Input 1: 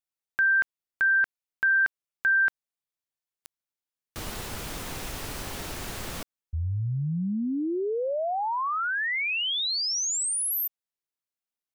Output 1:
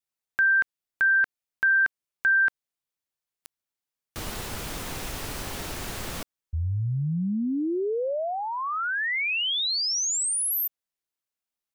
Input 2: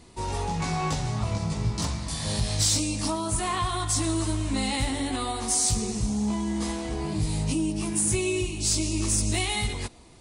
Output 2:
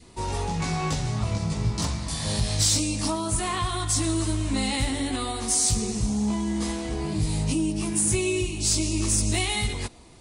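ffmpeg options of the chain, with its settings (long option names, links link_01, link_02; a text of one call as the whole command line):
ffmpeg -i in.wav -af "adynamicequalizer=threshold=0.01:dfrequency=880:dqfactor=1.5:tfrequency=880:tqfactor=1.5:attack=5:release=100:ratio=0.375:range=2.5:mode=cutabove:tftype=bell,volume=1.5dB" out.wav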